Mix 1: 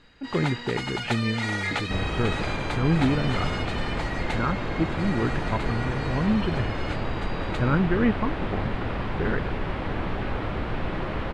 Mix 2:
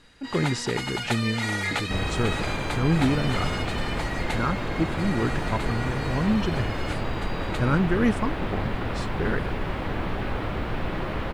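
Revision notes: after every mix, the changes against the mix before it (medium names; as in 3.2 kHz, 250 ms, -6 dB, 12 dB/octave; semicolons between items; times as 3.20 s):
speech: remove brick-wall FIR low-pass 3.3 kHz; master: remove distance through air 56 m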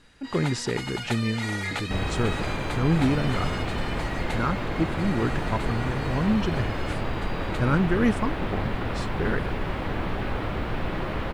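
first sound -3.5 dB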